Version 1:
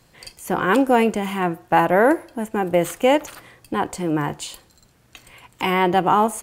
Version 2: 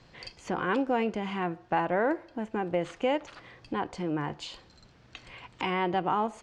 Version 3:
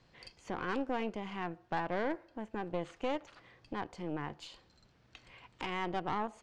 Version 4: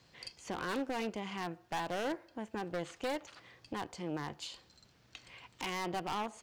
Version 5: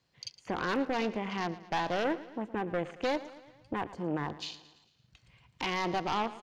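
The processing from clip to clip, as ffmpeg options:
-af "lowpass=f=5.4k:w=0.5412,lowpass=f=5.4k:w=1.3066,acompressor=threshold=-44dB:ratio=1.5"
-af "aeval=exprs='(tanh(14.1*val(0)+0.8)-tanh(0.8))/14.1':c=same,volume=-4dB"
-af "highpass=51,highshelf=f=3.8k:g=11,aeval=exprs='0.0422*(abs(mod(val(0)/0.0422+3,4)-2)-1)':c=same"
-af "afwtdn=0.00355,bandreject=f=7.9k:w=24,aecho=1:1:112|224|336|448|560:0.15|0.0838|0.0469|0.0263|0.0147,volume=5.5dB"

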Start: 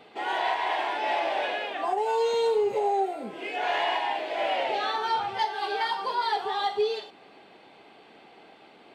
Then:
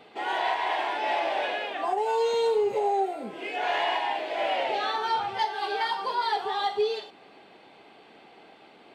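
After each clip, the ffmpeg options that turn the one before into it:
-af anull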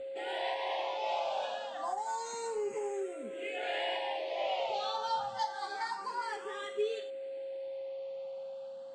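-filter_complex "[0:a]aeval=exprs='val(0)+0.0282*sin(2*PI*540*n/s)':c=same,lowpass=f=7.6k:t=q:w=4.5,asplit=2[a][b];[b]afreqshift=0.28[c];[a][c]amix=inputs=2:normalize=1,volume=-6.5dB"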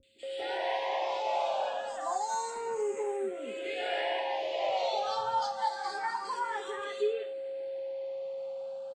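-filter_complex "[0:a]acrossover=split=200|3000[a][b][c];[c]adelay=30[d];[b]adelay=230[e];[a][e][d]amix=inputs=3:normalize=0,volume=3.5dB"

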